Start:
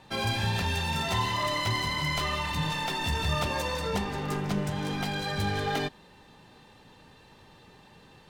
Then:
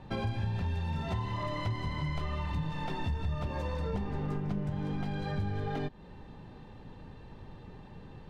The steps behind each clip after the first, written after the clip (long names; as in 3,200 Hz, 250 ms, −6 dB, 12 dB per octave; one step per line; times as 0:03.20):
spectral tilt −3 dB per octave
downward compressor 4 to 1, threshold −32 dBFS, peak gain reduction 14.5 dB
high-shelf EQ 6,300 Hz −7.5 dB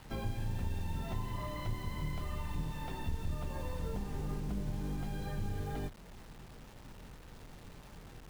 sub-octave generator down 2 octaves, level +2 dB
bit-depth reduction 8 bits, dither none
level −6.5 dB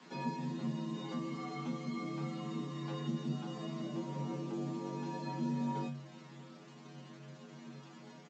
stiff-string resonator 95 Hz, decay 0.42 s, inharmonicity 0.002
downsampling to 16,000 Hz
frequency shifter +140 Hz
level +10 dB